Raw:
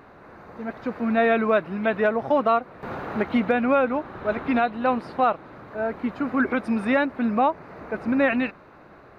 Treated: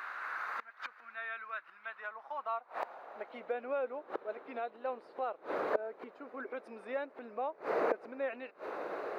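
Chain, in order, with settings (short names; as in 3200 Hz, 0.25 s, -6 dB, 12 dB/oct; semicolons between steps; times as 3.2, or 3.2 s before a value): flipped gate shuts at -28 dBFS, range -26 dB; wow and flutter 26 cents; high-pass sweep 1400 Hz -> 460 Hz, 1.73–3.66; gain +6 dB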